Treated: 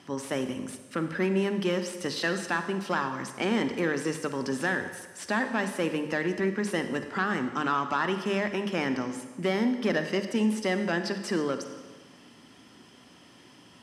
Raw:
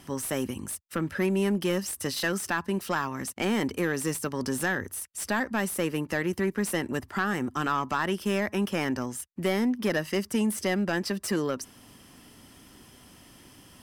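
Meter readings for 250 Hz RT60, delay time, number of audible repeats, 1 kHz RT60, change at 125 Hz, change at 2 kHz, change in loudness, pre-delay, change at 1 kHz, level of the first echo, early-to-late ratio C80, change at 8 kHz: 1.2 s, none, none, 1.3 s, -2.0 dB, +0.5 dB, 0.0 dB, 39 ms, +0.5 dB, none, 10.5 dB, -7.0 dB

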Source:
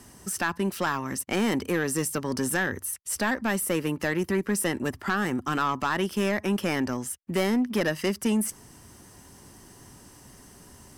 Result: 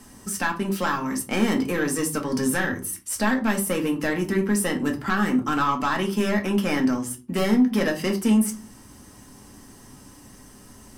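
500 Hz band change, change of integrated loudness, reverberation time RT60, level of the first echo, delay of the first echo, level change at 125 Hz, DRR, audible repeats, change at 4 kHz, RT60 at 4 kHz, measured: +2.0 dB, +3.5 dB, 0.40 s, none, none, +2.5 dB, 1.0 dB, none, +2.0 dB, 0.25 s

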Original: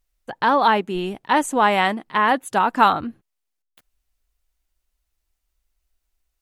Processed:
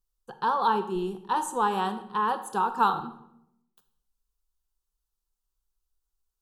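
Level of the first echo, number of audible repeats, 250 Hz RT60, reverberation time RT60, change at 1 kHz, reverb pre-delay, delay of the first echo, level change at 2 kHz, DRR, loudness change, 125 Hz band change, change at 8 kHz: none, none, 1.0 s, 0.75 s, -7.0 dB, 23 ms, none, -14.0 dB, 10.0 dB, -8.0 dB, -6.5 dB, -6.5 dB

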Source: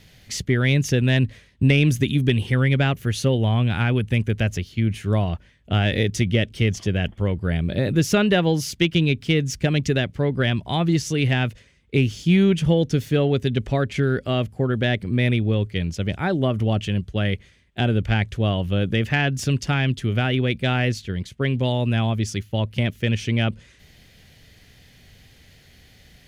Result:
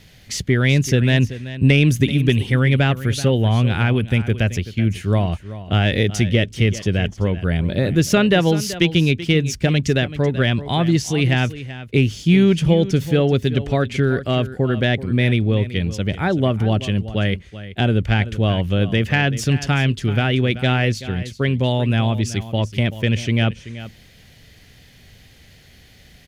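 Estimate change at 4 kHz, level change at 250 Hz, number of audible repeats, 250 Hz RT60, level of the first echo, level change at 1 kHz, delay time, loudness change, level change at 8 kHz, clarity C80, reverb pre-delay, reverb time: +3.0 dB, +3.0 dB, 1, none, -14.5 dB, +3.0 dB, 0.382 s, +3.0 dB, +3.0 dB, none, none, none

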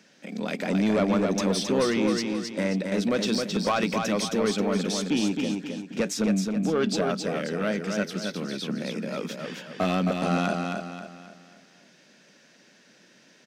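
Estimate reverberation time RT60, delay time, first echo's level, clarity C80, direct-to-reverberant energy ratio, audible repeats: none, 0.267 s, -4.5 dB, none, none, 4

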